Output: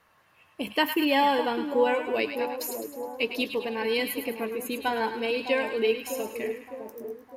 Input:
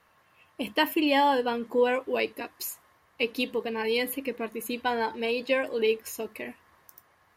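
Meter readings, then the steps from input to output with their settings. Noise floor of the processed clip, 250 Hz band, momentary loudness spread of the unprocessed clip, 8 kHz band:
−63 dBFS, +1.0 dB, 13 LU, +1.0 dB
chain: echo with a time of its own for lows and highs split 960 Hz, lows 608 ms, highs 105 ms, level −8 dB

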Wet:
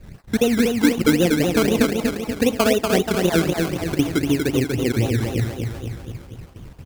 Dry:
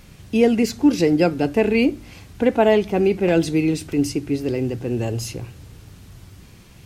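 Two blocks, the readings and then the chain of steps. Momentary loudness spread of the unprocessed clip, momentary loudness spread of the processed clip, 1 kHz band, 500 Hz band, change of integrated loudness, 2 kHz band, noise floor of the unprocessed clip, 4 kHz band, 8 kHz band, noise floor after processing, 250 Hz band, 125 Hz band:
9 LU, 13 LU, 0.0 dB, −1.5 dB, −0.5 dB, +3.0 dB, −46 dBFS, +5.5 dB, +5.5 dB, −42 dBFS, 0.0 dB, +3.5 dB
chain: time-frequency cells dropped at random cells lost 37%
low-shelf EQ 170 Hz +5 dB
downward compressor 3 to 1, threshold −18 dBFS, peak gain reduction 7.5 dB
high-shelf EQ 4,400 Hz −9.5 dB
repeating echo 240 ms, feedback 57%, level −4 dB
sample-and-hold swept by an LFO 19×, swing 60% 3.9 Hz
noise gate −45 dBFS, range −12 dB
level +2.5 dB

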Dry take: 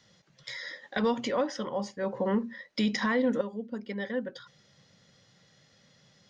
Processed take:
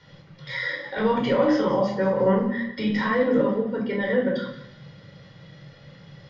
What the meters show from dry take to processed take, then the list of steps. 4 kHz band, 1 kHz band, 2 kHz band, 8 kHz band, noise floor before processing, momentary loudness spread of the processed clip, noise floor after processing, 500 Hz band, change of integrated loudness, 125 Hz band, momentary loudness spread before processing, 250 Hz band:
+2.5 dB, +7.5 dB, +7.0 dB, can't be measured, −64 dBFS, 8 LU, −50 dBFS, +9.0 dB, +8.0 dB, +10.0 dB, 12 LU, +7.0 dB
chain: high-shelf EQ 5,200 Hz +9 dB
brickwall limiter −27 dBFS, peak gain reduction 11 dB
high-frequency loss of the air 330 metres
feedback echo with a high-pass in the loop 180 ms, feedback 46%, high-pass 1,000 Hz, level −14 dB
rectangular room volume 900 cubic metres, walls furnished, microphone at 4.6 metres
level +8.5 dB

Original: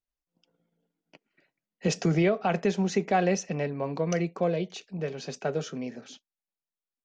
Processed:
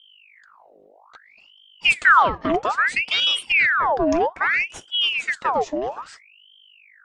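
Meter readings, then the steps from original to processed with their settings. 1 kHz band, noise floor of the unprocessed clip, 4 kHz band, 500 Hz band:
+12.5 dB, below −85 dBFS, +20.0 dB, +2.0 dB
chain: low shelf with overshoot 190 Hz +13.5 dB, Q 3
in parallel at −2 dB: downward compressor, threshold −27 dBFS, peak gain reduction 16 dB
on the sum: hum with harmonics 50 Hz, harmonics 6, −51 dBFS −6 dB per octave
ring modulator whose carrier an LFO sweeps 1,800 Hz, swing 75%, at 0.61 Hz
level +1 dB

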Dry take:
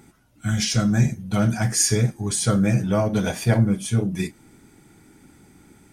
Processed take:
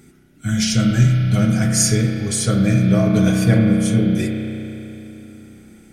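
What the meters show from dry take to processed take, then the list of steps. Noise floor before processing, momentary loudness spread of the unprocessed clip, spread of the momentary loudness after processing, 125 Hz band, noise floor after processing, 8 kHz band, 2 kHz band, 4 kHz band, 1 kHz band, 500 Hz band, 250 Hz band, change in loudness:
−54 dBFS, 7 LU, 15 LU, +5.0 dB, −50 dBFS, +2.5 dB, +3.5 dB, +3.0 dB, −0.5 dB, +2.5 dB, +6.5 dB, +5.0 dB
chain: parametric band 910 Hz −13.5 dB 0.58 octaves
spring reverb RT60 3.3 s, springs 32 ms, chirp 35 ms, DRR 1 dB
level +2.5 dB

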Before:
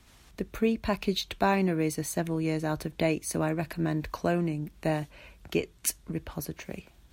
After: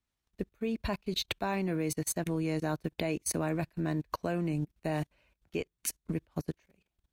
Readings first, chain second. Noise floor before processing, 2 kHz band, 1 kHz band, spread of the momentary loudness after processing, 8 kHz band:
−58 dBFS, −5.0 dB, −6.0 dB, 7 LU, −1.5 dB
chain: output level in coarse steps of 18 dB
expander for the loud parts 2.5 to 1, over −49 dBFS
level +6.5 dB

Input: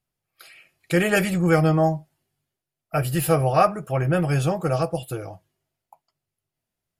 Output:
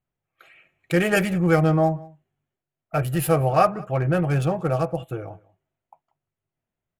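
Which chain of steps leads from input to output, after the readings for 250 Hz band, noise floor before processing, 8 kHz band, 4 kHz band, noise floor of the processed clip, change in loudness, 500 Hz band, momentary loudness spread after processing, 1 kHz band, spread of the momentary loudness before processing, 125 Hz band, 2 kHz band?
0.0 dB, below −85 dBFS, −3.0 dB, −2.0 dB, below −85 dBFS, 0.0 dB, 0.0 dB, 12 LU, 0.0 dB, 12 LU, 0.0 dB, −0.5 dB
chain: adaptive Wiener filter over 9 samples
slap from a distant wall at 32 metres, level −23 dB

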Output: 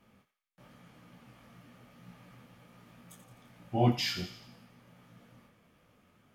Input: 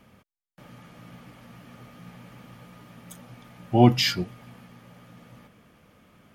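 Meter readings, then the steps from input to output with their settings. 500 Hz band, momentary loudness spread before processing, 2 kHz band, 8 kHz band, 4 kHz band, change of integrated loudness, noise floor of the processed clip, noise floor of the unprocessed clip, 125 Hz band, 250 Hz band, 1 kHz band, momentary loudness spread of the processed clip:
−9.0 dB, 15 LU, −8.5 dB, −8.5 dB, −8.5 dB, −9.0 dB, −77 dBFS, −85 dBFS, −8.5 dB, −10.5 dB, −8.5 dB, 12 LU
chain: feedback echo with a high-pass in the loop 85 ms, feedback 52%, high-pass 1,100 Hz, level −9 dB
micro pitch shift up and down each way 47 cents
level −5 dB

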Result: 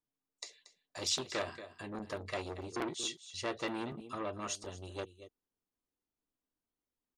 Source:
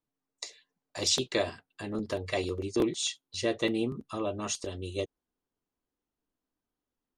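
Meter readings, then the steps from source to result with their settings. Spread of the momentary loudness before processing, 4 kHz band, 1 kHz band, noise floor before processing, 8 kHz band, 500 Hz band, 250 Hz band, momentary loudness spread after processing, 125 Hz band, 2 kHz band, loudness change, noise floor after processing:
15 LU, −6.5 dB, −1.5 dB, below −85 dBFS, −6.5 dB, −9.0 dB, −10.0 dB, 15 LU, −8.5 dB, −5.0 dB, −8.0 dB, below −85 dBFS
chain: dynamic equaliser 1,300 Hz, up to +6 dB, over −50 dBFS, Q 1.4
on a send: single-tap delay 232 ms −15.5 dB
on the sum: saturating transformer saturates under 1,700 Hz
level −6 dB

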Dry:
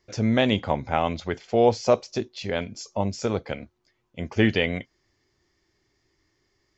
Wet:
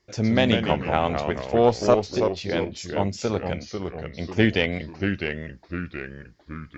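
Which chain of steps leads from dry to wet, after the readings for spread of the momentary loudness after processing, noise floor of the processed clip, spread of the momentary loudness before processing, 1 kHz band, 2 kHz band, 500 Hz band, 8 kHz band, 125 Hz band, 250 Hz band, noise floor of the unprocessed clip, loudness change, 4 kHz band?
14 LU, −54 dBFS, 12 LU, +1.5 dB, +2.5 dB, +2.0 dB, can't be measured, +2.0 dB, +2.0 dB, −72 dBFS, +0.5 dB, +2.0 dB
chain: harmonic generator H 2 −15 dB, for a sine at −5.5 dBFS
delay with pitch and tempo change per echo 98 ms, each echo −2 semitones, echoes 3, each echo −6 dB

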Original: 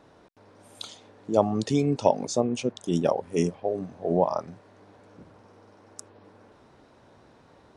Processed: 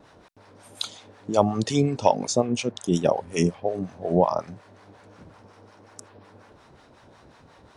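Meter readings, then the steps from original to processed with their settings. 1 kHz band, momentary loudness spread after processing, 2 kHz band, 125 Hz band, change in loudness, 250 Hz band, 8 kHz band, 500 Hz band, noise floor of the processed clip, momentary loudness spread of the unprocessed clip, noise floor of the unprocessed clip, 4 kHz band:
+3.5 dB, 12 LU, +5.5 dB, +3.5 dB, +1.5 dB, +1.5 dB, +5.5 dB, +1.5 dB, −54 dBFS, 17 LU, −57 dBFS, +6.0 dB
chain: parametric band 350 Hz −4.5 dB 2.5 octaves
pitch vibrato 1.4 Hz 18 cents
two-band tremolo in antiphase 5.5 Hz, depth 70%, crossover 690 Hz
level +9 dB

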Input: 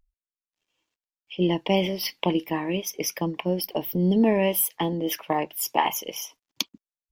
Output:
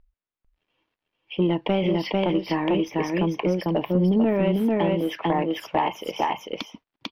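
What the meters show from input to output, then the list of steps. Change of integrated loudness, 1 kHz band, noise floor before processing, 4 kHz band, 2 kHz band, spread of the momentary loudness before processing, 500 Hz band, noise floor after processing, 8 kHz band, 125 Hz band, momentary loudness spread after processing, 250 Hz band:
+1.5 dB, +1.5 dB, below −85 dBFS, −3.0 dB, +0.5 dB, 11 LU, +2.5 dB, below −85 dBFS, below −15 dB, +3.5 dB, 8 LU, +3.0 dB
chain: single-tap delay 446 ms −3 dB
downward compressor 2.5 to 1, threshold −27 dBFS, peak gain reduction 8.5 dB
soft clipping −19 dBFS, distortion −19 dB
high-frequency loss of the air 330 metres
level +8.5 dB

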